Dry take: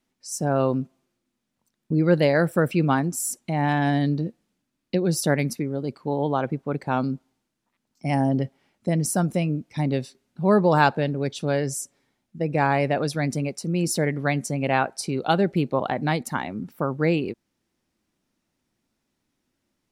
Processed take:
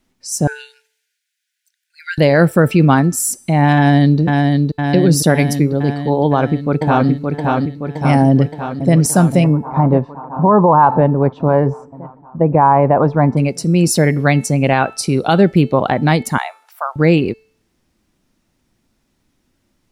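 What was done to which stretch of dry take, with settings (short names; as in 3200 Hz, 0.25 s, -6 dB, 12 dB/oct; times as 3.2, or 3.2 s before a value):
0.47–2.18 brick-wall FIR high-pass 1400 Hz
3.76–4.2 echo throw 0.51 s, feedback 70%, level -3 dB
6.24–7.08 echo throw 0.57 s, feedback 65%, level -3.5 dB
8.28–8.94 echo throw 0.52 s, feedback 75%, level -10.5 dB
9.44–13.37 synth low-pass 1000 Hz, resonance Q 5.6
16.38–16.96 Chebyshev high-pass 670 Hz, order 5
whole clip: low shelf 93 Hz +10 dB; de-hum 439.3 Hz, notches 31; maximiser +10.5 dB; gain -1 dB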